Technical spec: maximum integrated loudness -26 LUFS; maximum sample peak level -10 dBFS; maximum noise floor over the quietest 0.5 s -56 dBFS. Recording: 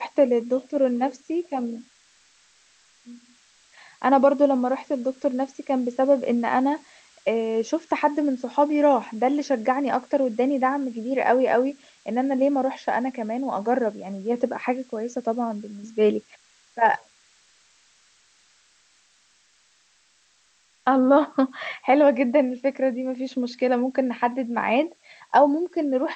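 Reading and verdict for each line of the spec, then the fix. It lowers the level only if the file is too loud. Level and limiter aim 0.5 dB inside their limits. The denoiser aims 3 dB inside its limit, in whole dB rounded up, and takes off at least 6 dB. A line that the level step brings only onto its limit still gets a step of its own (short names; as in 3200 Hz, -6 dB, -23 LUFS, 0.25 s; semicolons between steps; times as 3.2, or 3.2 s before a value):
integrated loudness -23.5 LUFS: fail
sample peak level -5.5 dBFS: fail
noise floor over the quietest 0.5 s -62 dBFS: OK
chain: gain -3 dB; limiter -10.5 dBFS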